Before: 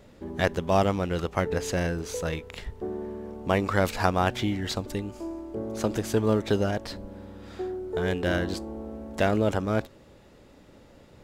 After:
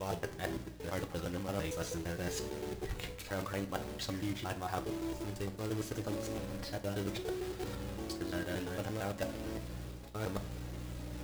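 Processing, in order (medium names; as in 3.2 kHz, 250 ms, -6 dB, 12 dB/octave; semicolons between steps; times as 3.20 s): slices played last to first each 114 ms, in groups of 7; companded quantiser 4-bit; hum 60 Hz, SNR 15 dB; reverse; compression 6:1, threshold -38 dBFS, peak gain reduction 20 dB; reverse; flange 0.39 Hz, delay 2.1 ms, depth 1.8 ms, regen +69%; on a send: reverberation, pre-delay 3 ms, DRR 7 dB; on the sum: trim +6 dB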